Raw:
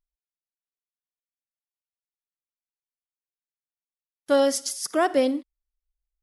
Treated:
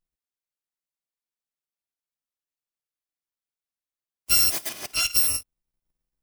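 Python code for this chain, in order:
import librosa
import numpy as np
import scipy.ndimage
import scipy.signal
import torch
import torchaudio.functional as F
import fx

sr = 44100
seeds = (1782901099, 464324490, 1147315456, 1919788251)

y = fx.bit_reversed(x, sr, seeds[0], block=256)
y = fx.high_shelf(y, sr, hz=8000.0, db=-8.5, at=(4.69, 5.13))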